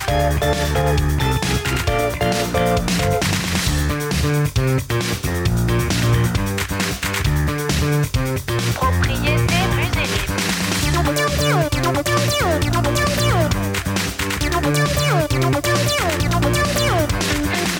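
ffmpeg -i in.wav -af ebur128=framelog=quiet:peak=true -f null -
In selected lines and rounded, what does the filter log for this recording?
Integrated loudness:
  I:         -18.6 LUFS
  Threshold: -28.5 LUFS
Loudness range:
  LRA:         1.6 LU
  Threshold: -38.6 LUFS
  LRA low:   -19.4 LUFS
  LRA high:  -17.8 LUFS
True peak:
  Peak:       -6.8 dBFS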